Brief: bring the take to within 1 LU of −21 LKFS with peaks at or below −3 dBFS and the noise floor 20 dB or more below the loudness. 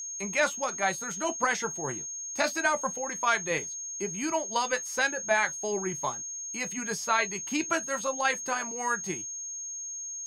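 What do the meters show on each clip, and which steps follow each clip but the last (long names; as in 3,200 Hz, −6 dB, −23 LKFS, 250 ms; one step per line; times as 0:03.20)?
number of dropouts 1; longest dropout 1.5 ms; interfering tone 6,500 Hz; level of the tone −35 dBFS; integrated loudness −29.5 LKFS; sample peak −11.5 dBFS; target loudness −21.0 LKFS
→ repair the gap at 0:03.58, 1.5 ms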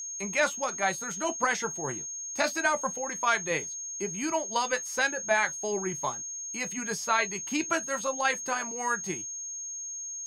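number of dropouts 0; interfering tone 6,500 Hz; level of the tone −35 dBFS
→ notch filter 6,500 Hz, Q 30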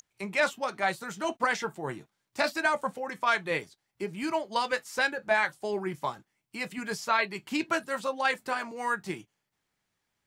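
interfering tone none found; integrated loudness −30.0 LKFS; sample peak −12.5 dBFS; target loudness −21.0 LKFS
→ level +9 dB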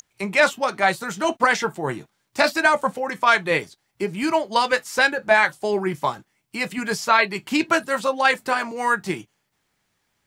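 integrated loudness −21.0 LKFS; sample peak −3.5 dBFS; background noise floor −72 dBFS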